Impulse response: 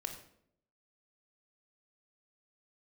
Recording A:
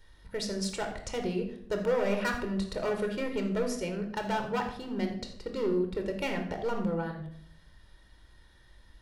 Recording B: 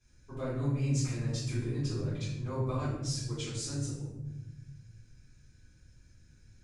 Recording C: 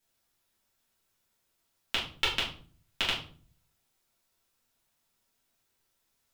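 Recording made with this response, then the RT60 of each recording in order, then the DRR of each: A; 0.70 s, 1.0 s, 0.45 s; 4.0 dB, -12.5 dB, -8.0 dB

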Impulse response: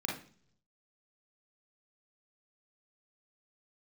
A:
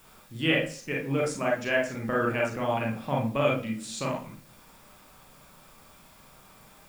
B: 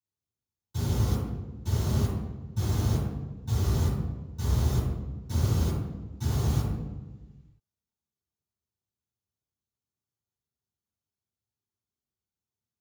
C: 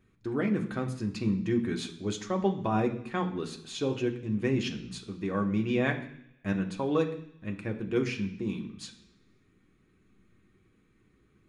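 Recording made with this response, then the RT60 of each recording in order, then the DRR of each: A; 0.50 s, 1.3 s, 0.75 s; -2.0 dB, -14.0 dB, 2.0 dB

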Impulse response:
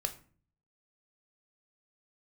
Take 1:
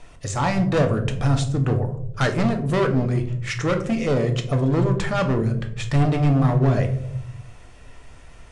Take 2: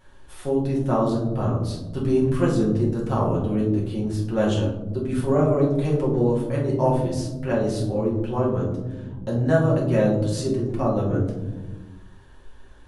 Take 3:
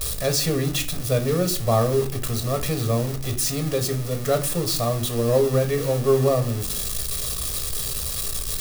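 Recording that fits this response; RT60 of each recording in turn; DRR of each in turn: 3; 0.75 s, 1.2 s, 0.45 s; 4.5 dB, -4.5 dB, 5.5 dB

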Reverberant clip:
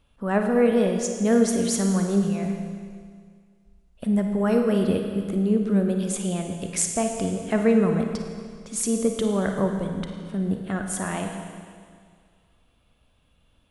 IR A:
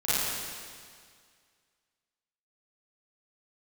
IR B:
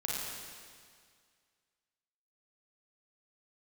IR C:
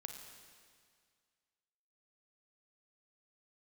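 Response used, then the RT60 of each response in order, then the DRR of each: C; 2.0 s, 2.0 s, 2.0 s; -15.0 dB, -5.5 dB, 3.5 dB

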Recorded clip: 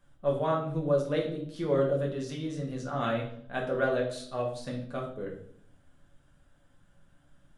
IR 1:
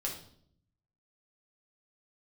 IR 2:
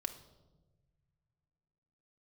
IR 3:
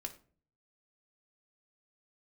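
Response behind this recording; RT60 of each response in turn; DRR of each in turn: 1; 0.60 s, 1.2 s, 0.45 s; -2.0 dB, 5.0 dB, 3.5 dB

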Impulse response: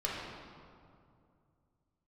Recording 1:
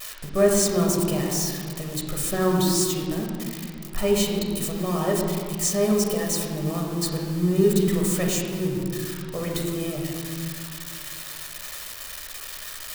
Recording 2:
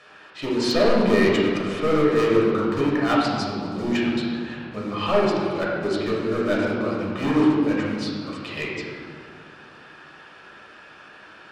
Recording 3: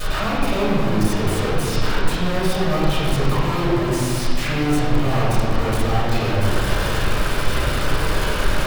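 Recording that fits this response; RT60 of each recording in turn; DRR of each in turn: 2; 2.4 s, 2.4 s, 2.4 s; -1.0 dB, -5.5 dB, -12.0 dB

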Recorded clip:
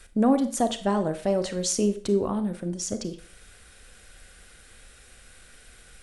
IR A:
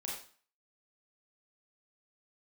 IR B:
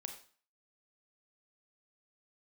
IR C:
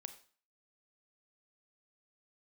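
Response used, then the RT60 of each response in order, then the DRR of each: C; 0.45 s, 0.45 s, 0.45 s; -4.0 dB, 4.5 dB, 9.0 dB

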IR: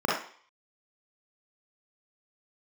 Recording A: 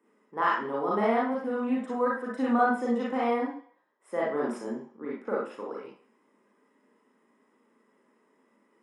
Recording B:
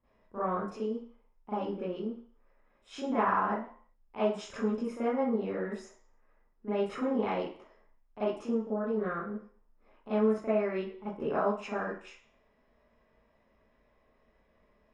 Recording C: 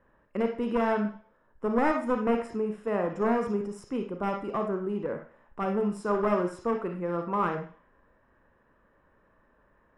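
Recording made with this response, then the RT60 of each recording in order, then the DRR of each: A; 0.50 s, 0.50 s, 0.50 s; -5.0 dB, -14.5 dB, 4.5 dB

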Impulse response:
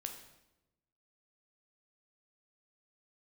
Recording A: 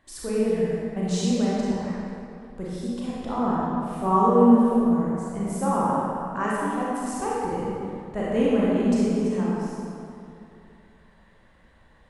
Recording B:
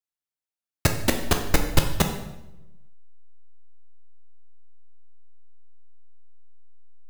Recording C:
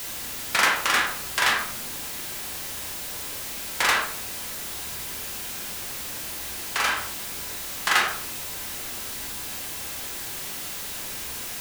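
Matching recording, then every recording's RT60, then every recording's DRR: B; 2.6 s, 0.95 s, 0.60 s; -7.0 dB, 4.0 dB, -1.5 dB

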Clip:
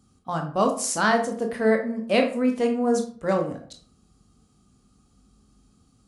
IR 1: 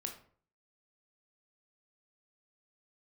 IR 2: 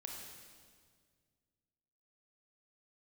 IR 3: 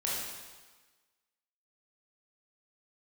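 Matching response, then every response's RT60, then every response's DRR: 1; 0.50 s, 1.9 s, 1.3 s; 3.0 dB, -0.5 dB, -6.0 dB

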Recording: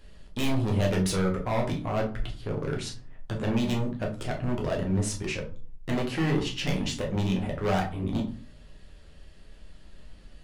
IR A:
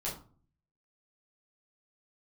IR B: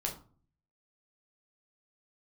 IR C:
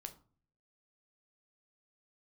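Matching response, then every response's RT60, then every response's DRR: B; 0.40 s, 0.40 s, 0.45 s; -8.0 dB, -0.5 dB, 6.5 dB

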